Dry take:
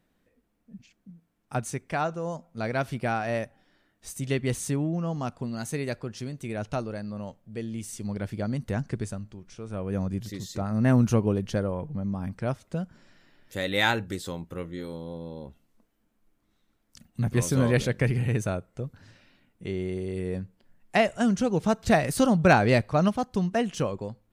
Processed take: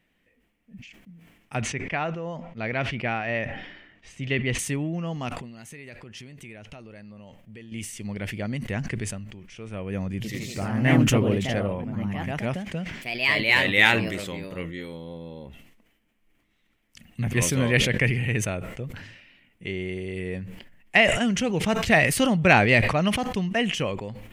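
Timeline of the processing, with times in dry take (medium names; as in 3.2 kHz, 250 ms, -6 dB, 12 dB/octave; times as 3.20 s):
1.61–4.59 s: distance through air 150 m
5.29–7.72 s: compression 10:1, threshold -39 dBFS
10.14–15.06 s: ever faster or slower copies 100 ms, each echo +2 st, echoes 2
whole clip: high-order bell 2.4 kHz +11 dB 1 oct; decay stretcher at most 54 dB/s; trim -1 dB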